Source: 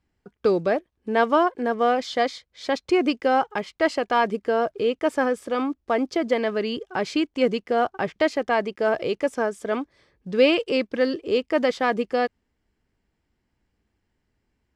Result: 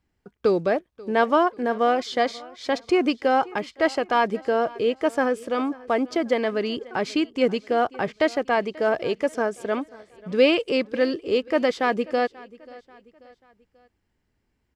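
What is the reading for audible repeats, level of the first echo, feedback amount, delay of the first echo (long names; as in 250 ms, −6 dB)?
2, −21.5 dB, 44%, 537 ms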